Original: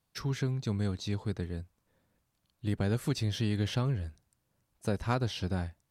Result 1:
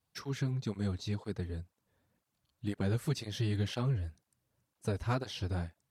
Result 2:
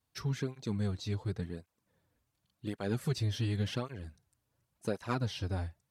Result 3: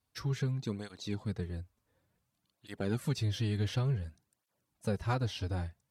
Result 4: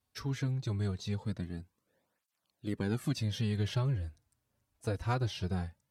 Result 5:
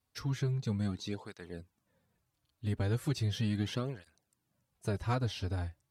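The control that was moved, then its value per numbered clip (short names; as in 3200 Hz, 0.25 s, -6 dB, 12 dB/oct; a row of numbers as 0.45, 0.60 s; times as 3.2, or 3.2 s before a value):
tape flanging out of phase, nulls at: 2, 0.9, 0.56, 0.22, 0.37 Hz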